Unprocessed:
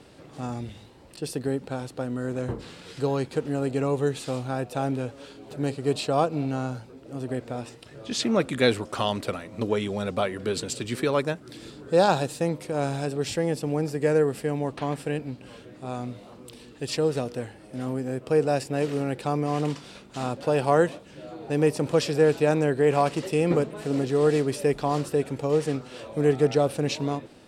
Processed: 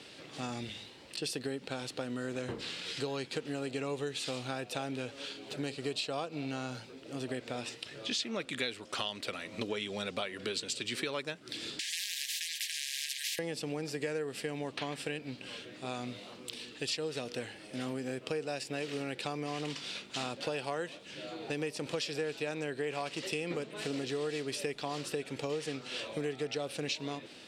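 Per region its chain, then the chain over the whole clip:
11.79–13.39 brick-wall FIR high-pass 1600 Hz + high shelf 9900 Hz -7.5 dB + spectral compressor 10:1
whole clip: weighting filter D; compressor 6:1, threshold -30 dBFS; gain -3 dB

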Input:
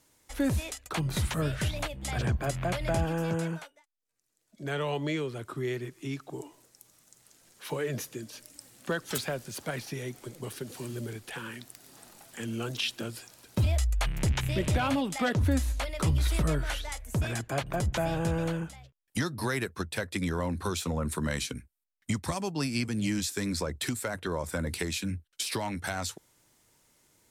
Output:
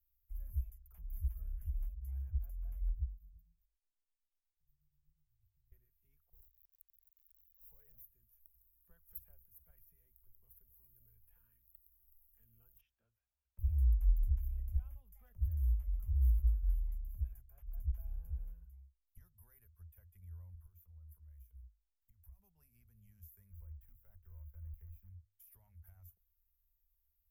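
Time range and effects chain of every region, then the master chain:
2.89–5.72 inverse Chebyshev band-stop 280–9900 Hz + beating tremolo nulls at 8.2 Hz
6.33–8.01 upward compressor, threshold -36 dBFS + sample gate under -41 dBFS
12.81–13.59 HPF 380 Hz 6 dB/oct + air absorption 160 m
20.54–22.39 compressor 16:1, threshold -40 dBFS + sample leveller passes 1
23.51–25.1 block floating point 3-bit + LPF 1600 Hz 6 dB/oct
whole clip: inverse Chebyshev band-stop 120–9100 Hz, stop band 40 dB; low shelf 290 Hz +7 dB; notches 50/100 Hz; gain -4 dB

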